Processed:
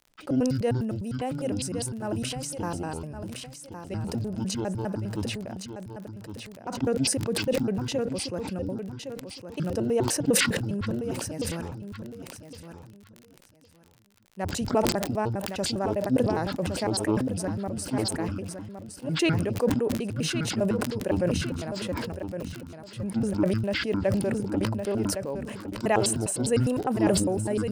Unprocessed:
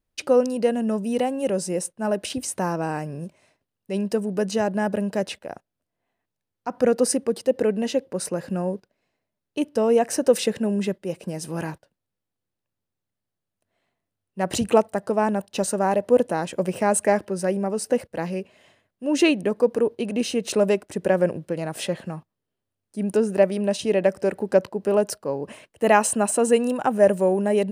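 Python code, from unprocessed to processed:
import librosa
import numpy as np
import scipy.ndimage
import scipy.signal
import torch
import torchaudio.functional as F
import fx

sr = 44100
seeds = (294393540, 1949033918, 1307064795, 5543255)

y = fx.pitch_trill(x, sr, semitones=-11.0, every_ms=101)
y = fx.echo_feedback(y, sr, ms=1112, feedback_pct=19, wet_db=-9.0)
y = fx.dmg_crackle(y, sr, seeds[0], per_s=48.0, level_db=-35.0)
y = fx.sustainer(y, sr, db_per_s=31.0)
y = y * librosa.db_to_amplitude(-7.0)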